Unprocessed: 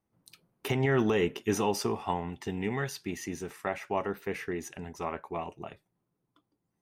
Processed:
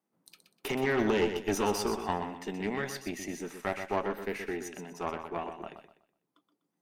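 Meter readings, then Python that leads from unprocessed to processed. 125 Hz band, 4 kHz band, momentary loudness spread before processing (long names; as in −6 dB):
−7.0 dB, +0.5 dB, 12 LU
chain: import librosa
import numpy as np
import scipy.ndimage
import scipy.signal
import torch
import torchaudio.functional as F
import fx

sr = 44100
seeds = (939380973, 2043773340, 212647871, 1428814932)

y = scipy.signal.sosfilt(scipy.signal.butter(4, 180.0, 'highpass', fs=sr, output='sos'), x)
y = fx.tube_stage(y, sr, drive_db=23.0, bias=0.75)
y = fx.echo_feedback(y, sr, ms=124, feedback_pct=30, wet_db=-8.5)
y = y * 10.0 ** (3.5 / 20.0)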